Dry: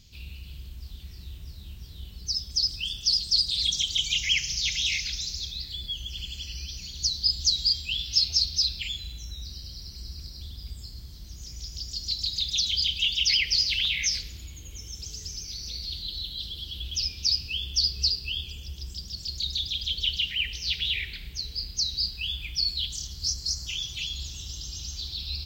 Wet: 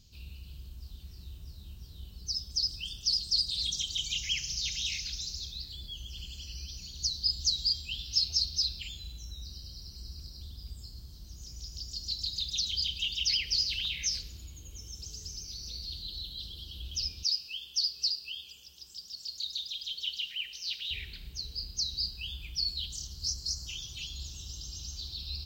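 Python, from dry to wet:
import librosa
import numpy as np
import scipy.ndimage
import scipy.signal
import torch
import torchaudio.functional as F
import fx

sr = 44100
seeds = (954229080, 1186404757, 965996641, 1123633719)

y = fx.highpass(x, sr, hz=1200.0, slope=6, at=(17.23, 20.91))
y = fx.peak_eq(y, sr, hz=2100.0, db=-9.0, octaves=0.59)
y = fx.notch(y, sr, hz=3400.0, q=18.0)
y = F.gain(torch.from_numpy(y), -4.5).numpy()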